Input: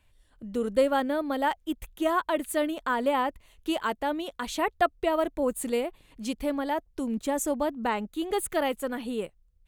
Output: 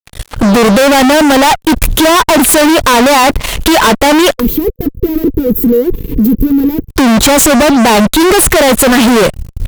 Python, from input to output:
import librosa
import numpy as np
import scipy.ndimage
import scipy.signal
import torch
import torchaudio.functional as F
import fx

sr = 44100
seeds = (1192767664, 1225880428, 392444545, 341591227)

y = fx.tracing_dist(x, sr, depth_ms=0.046)
y = fx.recorder_agc(y, sr, target_db=-17.5, rise_db_per_s=9.3, max_gain_db=30)
y = fx.fuzz(y, sr, gain_db=51.0, gate_db=-56.0)
y = fx.spec_box(y, sr, start_s=4.4, length_s=2.49, low_hz=500.0, high_hz=12000.0, gain_db=-24)
y = y * 10.0 ** (7.5 / 20.0)